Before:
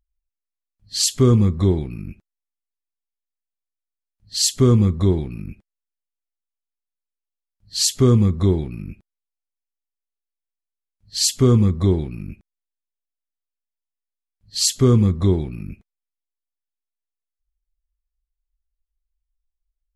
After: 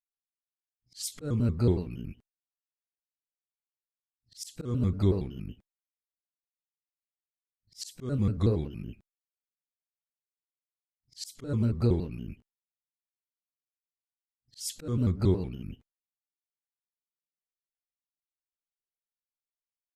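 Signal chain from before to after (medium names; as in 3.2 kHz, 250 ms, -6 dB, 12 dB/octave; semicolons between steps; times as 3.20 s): pitch shift switched off and on +3 st, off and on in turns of 93 ms; expander -43 dBFS; slow attack 321 ms; trim -7 dB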